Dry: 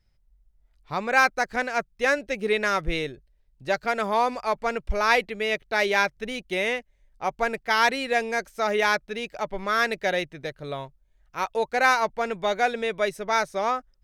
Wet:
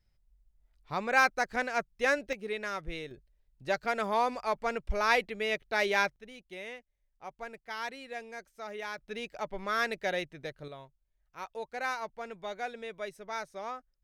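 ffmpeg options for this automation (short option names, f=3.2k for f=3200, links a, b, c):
-af "asetnsamples=n=441:p=0,asendcmd='2.33 volume volume -12dB;3.11 volume volume -5.5dB;6.16 volume volume -17dB;8.98 volume volume -7dB;10.68 volume volume -14dB',volume=-5dB"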